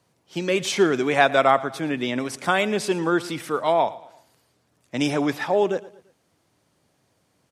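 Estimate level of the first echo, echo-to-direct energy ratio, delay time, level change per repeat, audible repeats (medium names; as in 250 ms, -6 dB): -19.0 dB, -18.0 dB, 114 ms, -7.5 dB, 3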